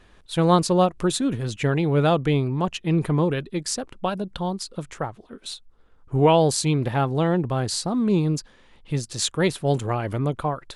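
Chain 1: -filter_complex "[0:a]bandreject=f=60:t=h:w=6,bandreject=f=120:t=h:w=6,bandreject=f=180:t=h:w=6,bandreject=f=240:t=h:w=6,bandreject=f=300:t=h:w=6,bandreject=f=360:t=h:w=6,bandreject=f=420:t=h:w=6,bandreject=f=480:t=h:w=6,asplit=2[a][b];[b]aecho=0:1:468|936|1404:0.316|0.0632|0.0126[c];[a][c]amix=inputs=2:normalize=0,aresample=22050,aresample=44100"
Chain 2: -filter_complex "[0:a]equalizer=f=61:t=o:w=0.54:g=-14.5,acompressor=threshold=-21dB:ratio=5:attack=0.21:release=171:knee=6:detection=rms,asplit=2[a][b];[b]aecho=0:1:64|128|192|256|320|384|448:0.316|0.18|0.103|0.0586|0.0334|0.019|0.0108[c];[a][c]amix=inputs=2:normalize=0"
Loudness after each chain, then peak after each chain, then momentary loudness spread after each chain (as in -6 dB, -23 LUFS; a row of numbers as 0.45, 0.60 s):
-23.5, -29.0 LUFS; -6.5, -15.0 dBFS; 12, 9 LU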